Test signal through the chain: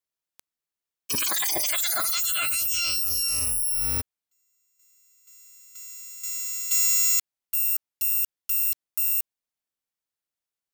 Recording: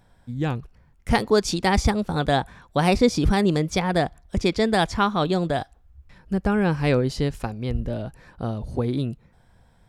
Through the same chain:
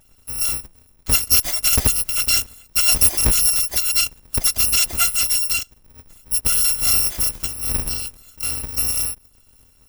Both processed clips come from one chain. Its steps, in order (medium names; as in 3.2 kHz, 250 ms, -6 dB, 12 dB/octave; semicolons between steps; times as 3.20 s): bit-reversed sample order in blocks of 256 samples; trim +3 dB